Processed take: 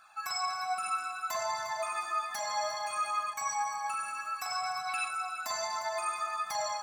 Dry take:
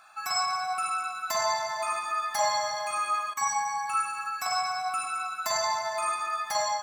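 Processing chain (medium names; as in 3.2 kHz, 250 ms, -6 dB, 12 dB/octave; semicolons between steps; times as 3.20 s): peak limiter -21 dBFS, peak gain reduction 6.5 dB; 4.88–5.08 s: time-frequency box 1.5–5 kHz +9 dB; two-band feedback delay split 1.8 kHz, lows 618 ms, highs 354 ms, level -15.5 dB; flange 0.62 Hz, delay 0.6 ms, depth 3.8 ms, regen +42%; 1.27–1.95 s: band-stop 4.9 kHz, Q 8.7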